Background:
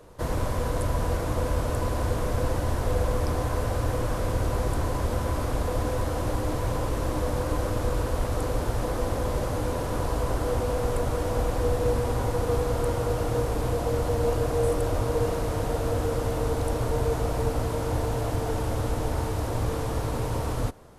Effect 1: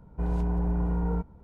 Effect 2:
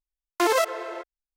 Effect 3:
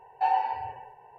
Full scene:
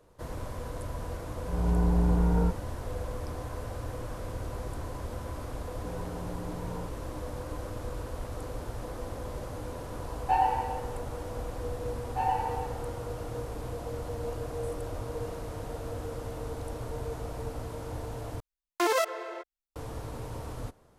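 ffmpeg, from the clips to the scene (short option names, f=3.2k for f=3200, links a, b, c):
-filter_complex "[1:a]asplit=2[a][b];[3:a]asplit=2[c][d];[0:a]volume=-10.5dB[e];[a]dynaudnorm=f=220:g=3:m=11.5dB[f];[b]highpass=180[g];[d]dynaudnorm=f=100:g=5:m=14dB[h];[e]asplit=2[i][j];[i]atrim=end=18.404[k];[2:a]atrim=end=1.36,asetpts=PTS-STARTPTS,volume=-4.5dB[l];[j]atrim=start=19.756[m];[f]atrim=end=1.43,asetpts=PTS-STARTPTS,volume=-8.5dB,afade=t=in:d=0.004:c=hsin,afade=t=out:st=1.426:d=0.004:c=hsin,adelay=1290[n];[g]atrim=end=1.43,asetpts=PTS-STARTPTS,volume=-8dB,afade=t=in:d=0.004:c=hsin,afade=t=out:st=1.426:d=0.004:c=hsin,adelay=249165S[o];[c]atrim=end=1.18,asetpts=PTS-STARTPTS,volume=-0.5dB,afade=t=in:d=0.004:c=hsin,afade=t=out:st=1.176:d=0.004:c=hsin,adelay=10080[p];[h]atrim=end=1.18,asetpts=PTS-STARTPTS,volume=-14dB,afade=t=in:d=0.004:c=hsin,afade=t=out:st=1.176:d=0.004:c=hsin,adelay=11950[q];[k][l]acrossfade=d=0.004:c1=hsin:c2=hsin[r];[r][m]acrossfade=d=0.004:c1=hsin:c2=hsin[s];[s][n][o][p][q]amix=inputs=5:normalize=0"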